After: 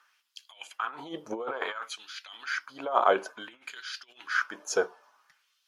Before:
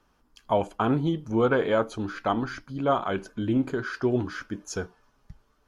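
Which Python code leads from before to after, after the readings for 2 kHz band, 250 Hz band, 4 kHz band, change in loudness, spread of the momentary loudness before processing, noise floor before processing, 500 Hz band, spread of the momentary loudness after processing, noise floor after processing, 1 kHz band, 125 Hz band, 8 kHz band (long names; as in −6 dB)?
+2.0 dB, −17.0 dB, +2.0 dB, −4.5 dB, 11 LU, −67 dBFS, −6.0 dB, 18 LU, −73 dBFS, −1.0 dB, below −25 dB, +3.5 dB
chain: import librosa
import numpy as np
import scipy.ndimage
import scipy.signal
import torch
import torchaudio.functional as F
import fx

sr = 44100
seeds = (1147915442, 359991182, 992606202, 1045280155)

y = fx.over_compress(x, sr, threshold_db=-27.0, ratio=-0.5)
y = fx.filter_lfo_highpass(y, sr, shape='sine', hz=0.57, low_hz=500.0, high_hz=3500.0, q=1.9)
y = fx.dynamic_eq(y, sr, hz=1100.0, q=1.6, threshold_db=-42.0, ratio=4.0, max_db=4)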